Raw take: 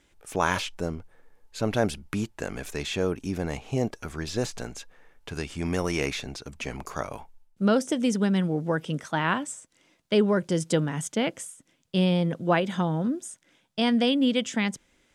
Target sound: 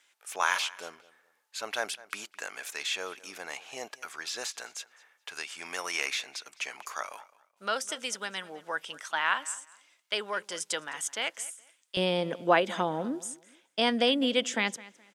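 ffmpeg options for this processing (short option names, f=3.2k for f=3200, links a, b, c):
-filter_complex "[0:a]asetnsamples=n=441:p=0,asendcmd='11.97 highpass f 390',highpass=1.1k,asplit=2[a][b];[b]adelay=210,lowpass=f=4.9k:p=1,volume=-19.5dB,asplit=2[c][d];[d]adelay=210,lowpass=f=4.9k:p=1,volume=0.26[e];[a][c][e]amix=inputs=3:normalize=0,volume=1.5dB"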